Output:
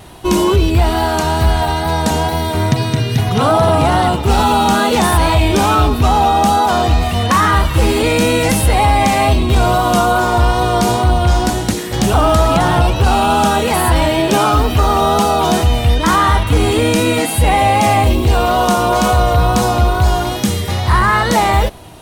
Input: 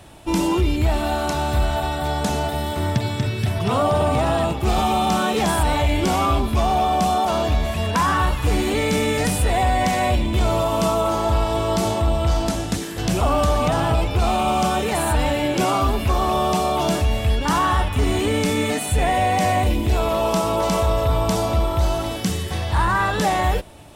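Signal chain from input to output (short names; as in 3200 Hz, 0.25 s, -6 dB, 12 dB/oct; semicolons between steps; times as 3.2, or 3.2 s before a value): wow and flutter 28 cents; speed mistake 44.1 kHz file played as 48 kHz; gain +7 dB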